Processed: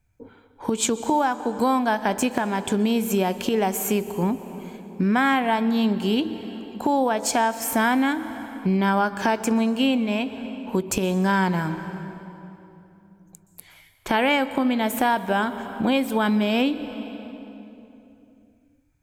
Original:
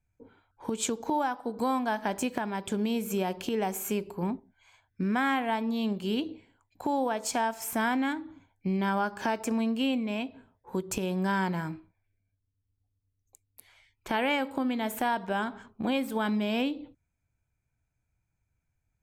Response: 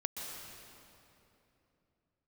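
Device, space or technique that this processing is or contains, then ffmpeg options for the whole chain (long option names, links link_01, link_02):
ducked reverb: -filter_complex "[0:a]asplit=3[link_01][link_02][link_03];[1:a]atrim=start_sample=2205[link_04];[link_02][link_04]afir=irnorm=-1:irlink=0[link_05];[link_03]apad=whole_len=838806[link_06];[link_05][link_06]sidechaincompress=threshold=-32dB:ratio=8:attack=28:release=509,volume=-6.5dB[link_07];[link_01][link_07]amix=inputs=2:normalize=0,volume=6dB"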